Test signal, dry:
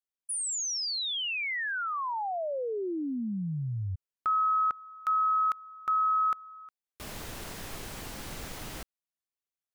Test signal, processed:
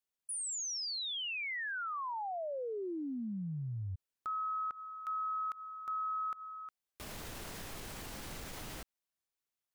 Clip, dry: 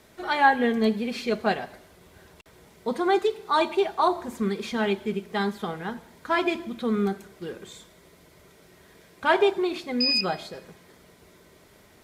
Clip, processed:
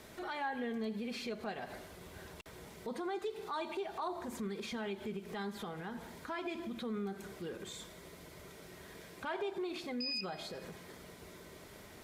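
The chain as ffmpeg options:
ffmpeg -i in.wav -af "acompressor=threshold=-41dB:ratio=3:attack=0.12:release=138:knee=1:detection=peak,volume=1.5dB" out.wav

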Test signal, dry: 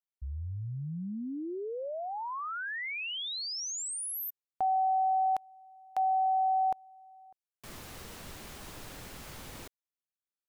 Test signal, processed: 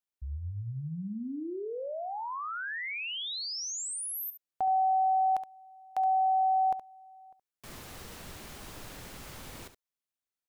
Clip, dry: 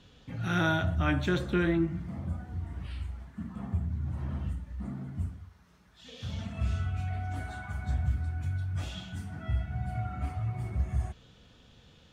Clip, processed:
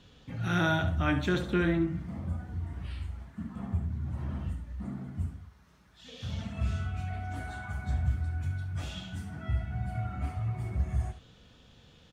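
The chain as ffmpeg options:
ffmpeg -i in.wav -af "aecho=1:1:70:0.266" out.wav

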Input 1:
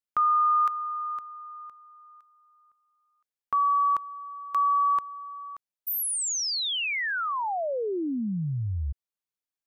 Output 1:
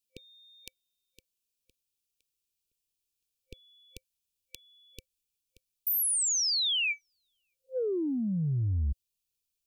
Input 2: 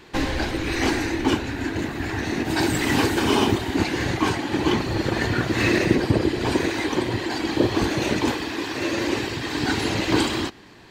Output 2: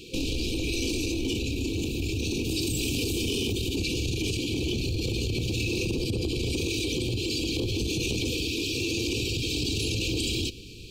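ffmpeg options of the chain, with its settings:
ffmpeg -i in.wav -af "asubboost=boost=4:cutoff=100,acontrast=60,highshelf=frequency=3100:gain=6,afftfilt=real='re*(1-between(b*sr/4096,520,2300))':imag='im*(1-between(b*sr/4096,520,2300))':win_size=4096:overlap=0.75,acompressor=threshold=-25dB:ratio=10:attack=6.3:release=20:knee=6:detection=peak,volume=-3dB" out.wav

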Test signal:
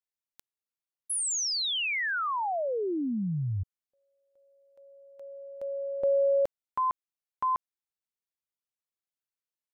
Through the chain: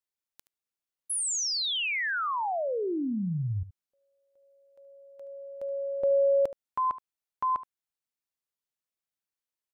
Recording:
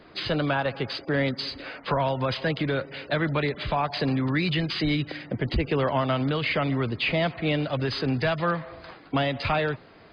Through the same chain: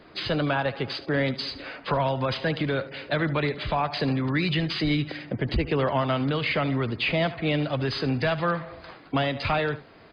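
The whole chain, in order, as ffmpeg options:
ffmpeg -i in.wav -af "aecho=1:1:74:0.168" out.wav

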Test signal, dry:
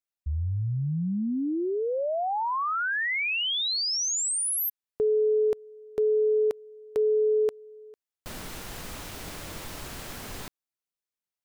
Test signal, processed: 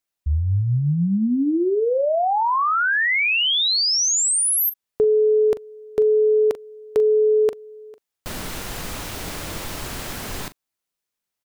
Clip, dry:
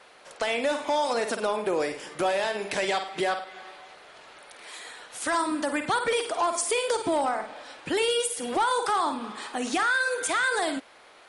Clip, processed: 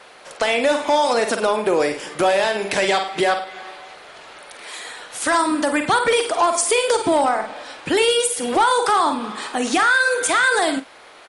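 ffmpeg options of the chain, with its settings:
ffmpeg -i in.wav -filter_complex "[0:a]asplit=2[link_01][link_02];[link_02]adelay=41,volume=-14dB[link_03];[link_01][link_03]amix=inputs=2:normalize=0,volume=8dB" out.wav

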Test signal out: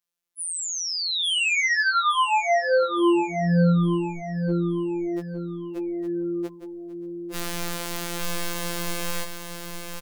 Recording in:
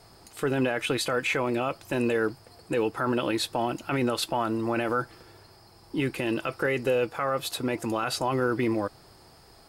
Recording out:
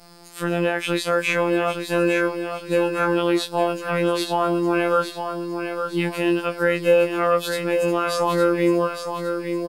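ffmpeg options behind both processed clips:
ffmpeg -i in.wav -filter_complex "[0:a]bandreject=frequency=780:width=12,acrossover=split=3100[link_01][link_02];[link_02]acompressor=threshold=-33dB:ratio=4:attack=1:release=60[link_03];[link_01][link_03]amix=inputs=2:normalize=0,afftfilt=real='hypot(re,im)*cos(PI*b)':imag='0':win_size=1024:overlap=0.75,aecho=1:1:861|1722|2583|3444|4305:0.447|0.174|0.0679|0.0265|0.0103,afftfilt=real='re*2.83*eq(mod(b,8),0)':imag='im*2.83*eq(mod(b,8),0)':win_size=2048:overlap=0.75,volume=3dB" out.wav

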